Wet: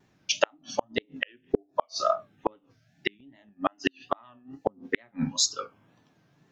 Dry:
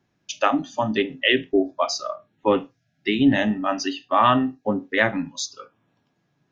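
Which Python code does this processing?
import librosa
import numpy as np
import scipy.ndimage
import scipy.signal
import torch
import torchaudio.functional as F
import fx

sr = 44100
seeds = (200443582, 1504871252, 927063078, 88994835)

y = fx.wow_flutter(x, sr, seeds[0], rate_hz=2.1, depth_cents=110.0)
y = fx.gate_flip(y, sr, shuts_db=-14.0, range_db=-42)
y = F.gain(torch.from_numpy(y), 5.5).numpy()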